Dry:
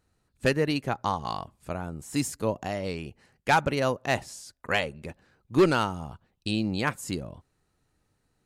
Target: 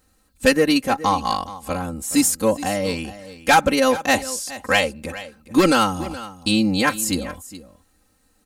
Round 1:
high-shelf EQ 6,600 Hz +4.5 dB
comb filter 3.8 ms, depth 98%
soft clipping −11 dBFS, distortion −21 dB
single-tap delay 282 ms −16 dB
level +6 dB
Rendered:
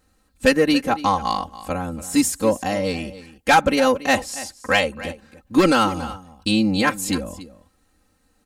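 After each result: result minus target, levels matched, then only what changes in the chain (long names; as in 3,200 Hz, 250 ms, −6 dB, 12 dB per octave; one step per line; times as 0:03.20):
echo 139 ms early; 8,000 Hz band −3.5 dB
change: single-tap delay 421 ms −16 dB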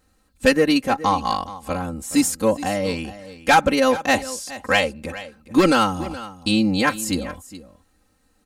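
8,000 Hz band −3.5 dB
change: high-shelf EQ 6,600 Hz +11.5 dB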